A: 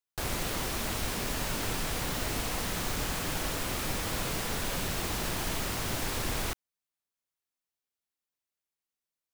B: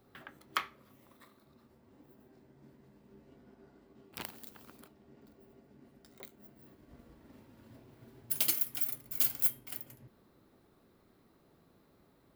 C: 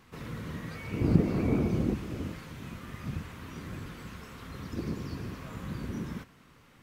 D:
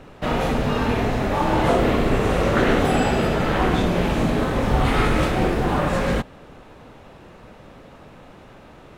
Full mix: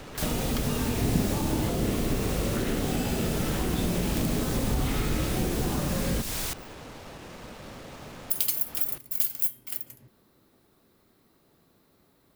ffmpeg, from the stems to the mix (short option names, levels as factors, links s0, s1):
-filter_complex "[0:a]volume=0.75[s0];[1:a]volume=1.12[s1];[2:a]volume=0.631[s2];[3:a]acrusher=bits=7:mix=0:aa=0.000001,aemphasis=mode=reproduction:type=50kf,volume=1[s3];[s0][s1][s3]amix=inputs=3:normalize=0,highshelf=f=3100:g=8.5,acompressor=threshold=0.0794:ratio=6,volume=1[s4];[s2][s4]amix=inputs=2:normalize=0,acrossover=split=400|3000[s5][s6][s7];[s6]acompressor=threshold=0.0141:ratio=6[s8];[s5][s8][s7]amix=inputs=3:normalize=0"